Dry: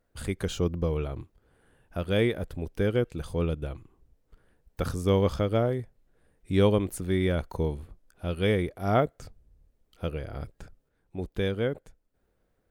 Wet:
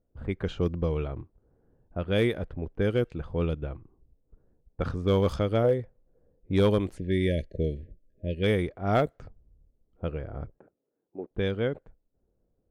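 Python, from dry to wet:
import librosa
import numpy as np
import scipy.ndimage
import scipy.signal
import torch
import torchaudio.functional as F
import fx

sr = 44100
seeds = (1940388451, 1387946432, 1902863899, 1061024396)

y = fx.spec_erase(x, sr, start_s=6.97, length_s=1.46, low_hz=650.0, high_hz=1600.0)
y = fx.cheby1_bandpass(y, sr, low_hz=320.0, high_hz=2400.0, order=2, at=(10.58, 11.31))
y = fx.env_lowpass(y, sr, base_hz=520.0, full_db=-20.0)
y = fx.peak_eq(y, sr, hz=510.0, db=10.0, octaves=0.26, at=(5.64, 6.56))
y = np.clip(y, -10.0 ** (-15.0 / 20.0), 10.0 ** (-15.0 / 20.0))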